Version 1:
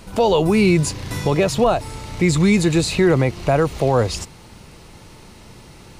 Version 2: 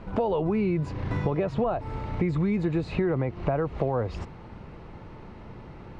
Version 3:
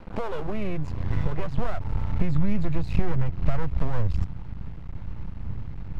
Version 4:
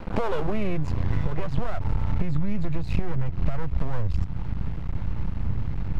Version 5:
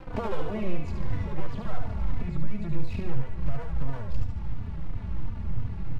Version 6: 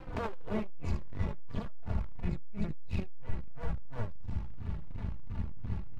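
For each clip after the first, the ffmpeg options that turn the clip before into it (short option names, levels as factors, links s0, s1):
-af "lowpass=1600,acompressor=threshold=0.0708:ratio=6"
-af "aeval=exprs='max(val(0),0)':c=same,asubboost=boost=8.5:cutoff=150"
-af "acompressor=threshold=0.0562:ratio=6,volume=2.37"
-filter_complex "[0:a]aecho=1:1:73|146|219|292|365|438|511:0.562|0.298|0.158|0.0837|0.0444|0.0235|0.0125,asplit=2[s0][s1];[s1]adelay=3.3,afreqshift=-2.9[s2];[s0][s2]amix=inputs=2:normalize=1,volume=0.708"
-af "aeval=exprs='(tanh(15.8*val(0)+0.75)-tanh(0.75))/15.8':c=same,volume=1.33"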